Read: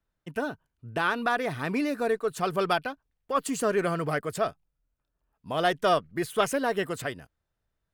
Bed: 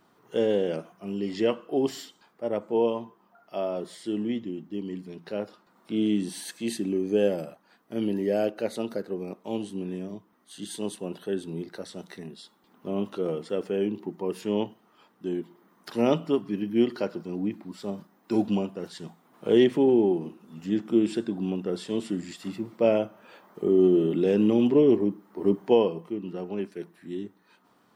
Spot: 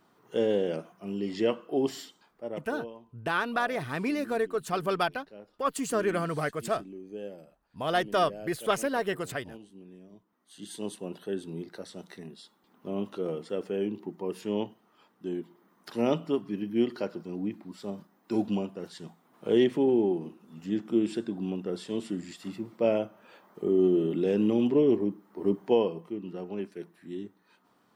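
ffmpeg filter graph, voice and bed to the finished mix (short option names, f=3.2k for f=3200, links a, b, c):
-filter_complex "[0:a]adelay=2300,volume=-2dB[a];[1:a]volume=11dB,afade=t=out:st=2.11:d=0.66:silence=0.188365,afade=t=in:st=10.07:d=0.81:silence=0.223872[b];[a][b]amix=inputs=2:normalize=0"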